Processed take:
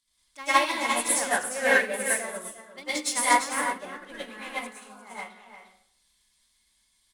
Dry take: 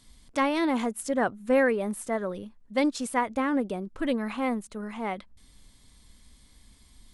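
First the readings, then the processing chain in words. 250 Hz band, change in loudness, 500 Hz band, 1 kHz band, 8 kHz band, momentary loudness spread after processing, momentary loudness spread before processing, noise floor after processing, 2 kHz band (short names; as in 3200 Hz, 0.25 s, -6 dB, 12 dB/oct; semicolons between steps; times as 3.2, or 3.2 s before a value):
-10.5 dB, +3.0 dB, -3.5 dB, +4.0 dB, +13.5 dB, 18 LU, 10 LU, -69 dBFS, +7.5 dB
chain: sample leveller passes 1; tilt shelf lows -9.5 dB, about 750 Hz; on a send: echo 0.35 s -5 dB; on the sum: dynamic EQ 9000 Hz, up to +6 dB, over -41 dBFS, Q 0.8; in parallel at -12 dB: wavefolder -23 dBFS; on the sum: spectral delete 4.77–4.99, 1700–4100 Hz; plate-style reverb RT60 0.64 s, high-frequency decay 0.85×, pre-delay 90 ms, DRR -8 dB; upward expander 2.5:1, over -21 dBFS; gain -7 dB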